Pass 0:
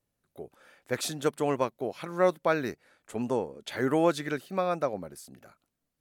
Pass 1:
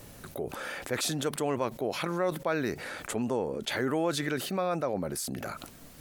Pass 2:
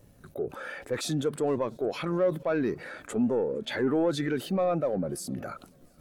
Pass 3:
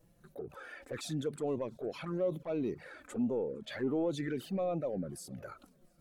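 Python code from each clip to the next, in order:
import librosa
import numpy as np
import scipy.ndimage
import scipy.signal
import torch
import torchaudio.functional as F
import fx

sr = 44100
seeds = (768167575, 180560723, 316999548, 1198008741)

y1 = fx.env_flatten(x, sr, amount_pct=70)
y1 = y1 * librosa.db_to_amplitude(-7.0)
y2 = fx.leveller(y1, sr, passes=2)
y2 = fx.echo_heads(y2, sr, ms=231, heads='second and third', feedback_pct=41, wet_db=-22.5)
y2 = fx.spectral_expand(y2, sr, expansion=1.5)
y2 = y2 * librosa.db_to_amplitude(-2.0)
y3 = fx.env_flanger(y2, sr, rest_ms=6.5, full_db=-23.5)
y3 = y3 * librosa.db_to_amplitude(-6.0)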